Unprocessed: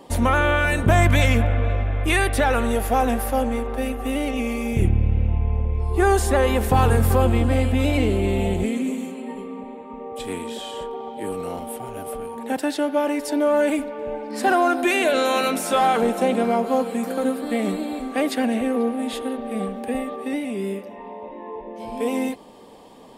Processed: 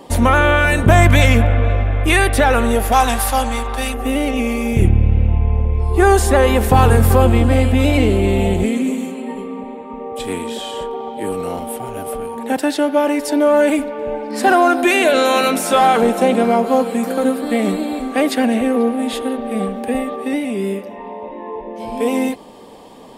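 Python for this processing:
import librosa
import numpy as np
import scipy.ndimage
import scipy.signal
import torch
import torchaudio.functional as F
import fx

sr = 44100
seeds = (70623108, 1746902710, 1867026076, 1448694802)

y = fx.graphic_eq_10(x, sr, hz=(250, 500, 1000, 4000, 8000), db=(-6, -7, 6, 9, 8), at=(2.92, 3.94))
y = y * 10.0 ** (6.0 / 20.0)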